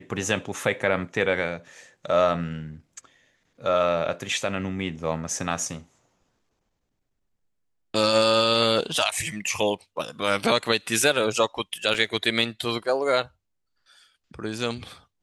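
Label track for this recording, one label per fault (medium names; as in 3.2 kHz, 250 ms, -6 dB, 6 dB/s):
11.940000	11.940000	dropout 4.1 ms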